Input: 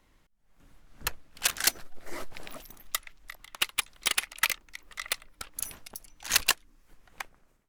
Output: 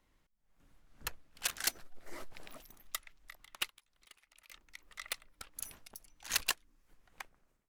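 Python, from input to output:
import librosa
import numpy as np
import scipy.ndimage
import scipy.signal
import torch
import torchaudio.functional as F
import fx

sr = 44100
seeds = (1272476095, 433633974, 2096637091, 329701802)

y = fx.auto_swell(x, sr, attack_ms=558.0, at=(3.68, 4.52), fade=0.02)
y = F.gain(torch.from_numpy(y), -8.5).numpy()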